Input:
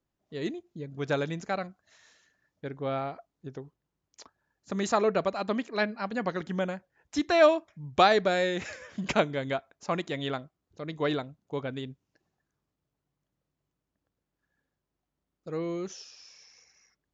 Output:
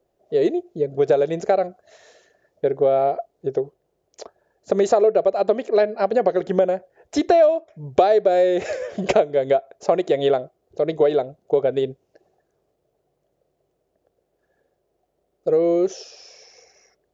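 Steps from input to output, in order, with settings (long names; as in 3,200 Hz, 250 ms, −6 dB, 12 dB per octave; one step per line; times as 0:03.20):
flat-topped bell 520 Hz +15.5 dB 1.3 octaves
downward compressor 5 to 1, threshold −21 dBFS, peak gain reduction 18 dB
level +6.5 dB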